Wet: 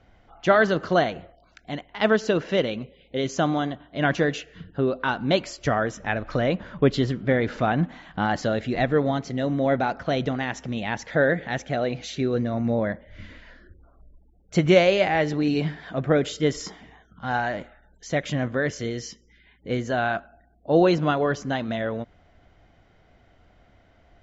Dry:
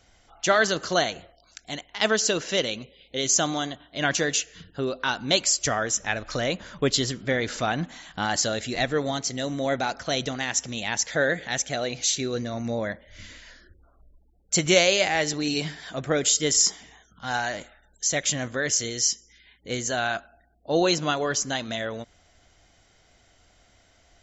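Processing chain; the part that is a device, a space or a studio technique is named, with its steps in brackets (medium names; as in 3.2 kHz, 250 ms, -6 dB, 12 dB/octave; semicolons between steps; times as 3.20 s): phone in a pocket (low-pass 3.2 kHz 12 dB/octave; peaking EQ 170 Hz +3 dB 1.4 oct; treble shelf 2.2 kHz -10 dB); trim +4 dB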